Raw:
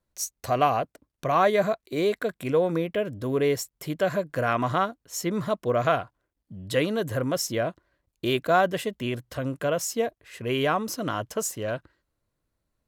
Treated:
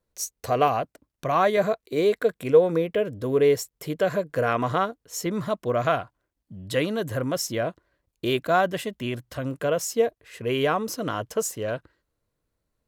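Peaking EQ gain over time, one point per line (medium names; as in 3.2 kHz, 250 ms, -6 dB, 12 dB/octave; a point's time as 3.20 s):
peaking EQ 460 Hz 0.26 oct
+10 dB
from 0.68 s -1 dB
from 1.57 s +8.5 dB
from 5.26 s -1 dB
from 7.63 s +5 dB
from 8.39 s -3.5 dB
from 9.51 s +5.5 dB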